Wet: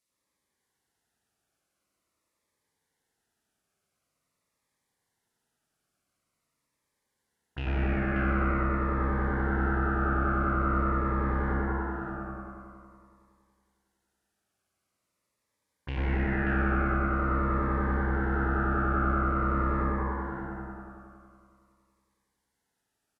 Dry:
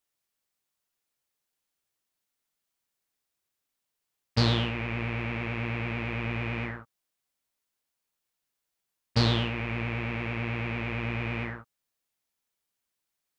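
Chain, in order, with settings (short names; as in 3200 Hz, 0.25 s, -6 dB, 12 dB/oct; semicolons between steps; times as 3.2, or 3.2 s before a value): HPF 78 Hz; limiter -21 dBFS, peak gain reduction 12.5 dB; on a send: echo 0.336 s -9 dB; on the sum: spring tank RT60 1.3 s, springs 53 ms, chirp 75 ms, DRR -8.5 dB; speed mistake 78 rpm record played at 45 rpm; cascading phaser falling 0.46 Hz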